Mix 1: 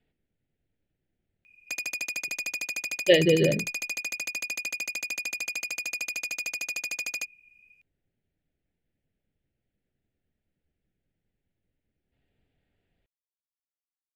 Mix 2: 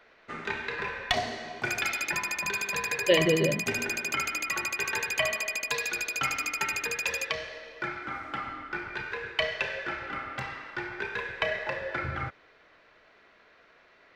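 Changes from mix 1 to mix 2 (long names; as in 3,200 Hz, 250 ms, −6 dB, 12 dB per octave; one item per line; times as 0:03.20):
speech −3.5 dB
first sound: unmuted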